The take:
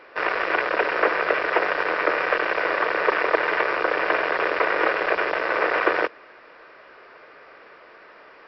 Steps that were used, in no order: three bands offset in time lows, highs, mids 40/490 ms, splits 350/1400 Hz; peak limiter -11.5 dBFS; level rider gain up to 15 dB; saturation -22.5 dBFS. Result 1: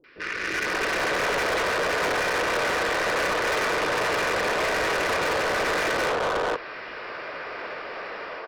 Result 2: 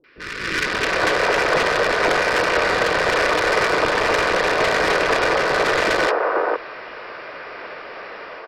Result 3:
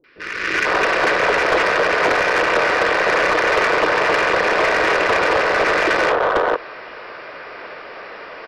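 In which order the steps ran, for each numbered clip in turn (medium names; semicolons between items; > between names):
peak limiter > level rider > three bands offset in time > saturation; saturation > level rider > peak limiter > three bands offset in time; three bands offset in time > saturation > level rider > peak limiter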